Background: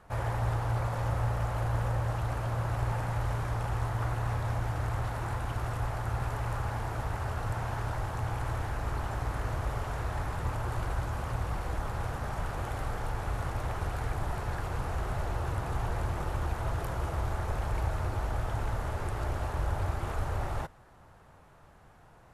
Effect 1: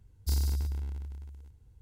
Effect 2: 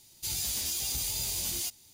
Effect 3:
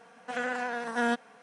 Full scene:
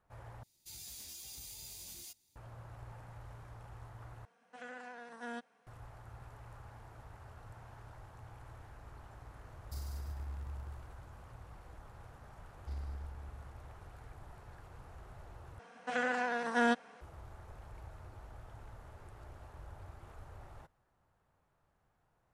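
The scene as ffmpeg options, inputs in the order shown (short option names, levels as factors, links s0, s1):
-filter_complex "[3:a]asplit=2[s0][s1];[1:a]asplit=2[s2][s3];[0:a]volume=0.106[s4];[2:a]bandreject=f=3000:w=18[s5];[s2]acompressor=threshold=0.0141:ratio=6:attack=3.2:release=140:knee=1:detection=peak[s6];[s3]lowpass=2500[s7];[s1]lowpass=8600[s8];[s4]asplit=4[s9][s10][s11][s12];[s9]atrim=end=0.434[s13];[s5]atrim=end=1.93,asetpts=PTS-STARTPTS,volume=0.15[s14];[s10]atrim=start=2.356:end=4.254[s15];[s0]atrim=end=1.42,asetpts=PTS-STARTPTS,volume=0.158[s16];[s11]atrim=start=5.666:end=15.594[s17];[s8]atrim=end=1.42,asetpts=PTS-STARTPTS,volume=0.841[s18];[s12]atrim=start=17.006[s19];[s6]atrim=end=1.81,asetpts=PTS-STARTPTS,volume=0.708,afade=t=in:d=0.004:c=hsin,afade=t=out:st=1.806:d=0.004:c=hsin,adelay=9450[s20];[s7]atrim=end=1.81,asetpts=PTS-STARTPTS,volume=0.211,afade=t=in:d=0.004:c=hsin,afade=t=out:st=1.806:d=0.004:c=hsin,adelay=12400[s21];[s13][s14]acrossfade=d=0.004:c1=hsin:c2=hsin[s22];[s22][s15]acrossfade=d=0.004:c1=hsin:c2=hsin[s23];[s23][s16]acrossfade=d=0.004:c1=hsin:c2=hsin[s24];[s24][s17]acrossfade=d=0.004:c1=hsin:c2=hsin[s25];[s25][s18]acrossfade=d=0.004:c1=hsin:c2=hsin[s26];[s26][s19]acrossfade=d=0.004:c1=hsin:c2=hsin[s27];[s27][s20][s21]amix=inputs=3:normalize=0"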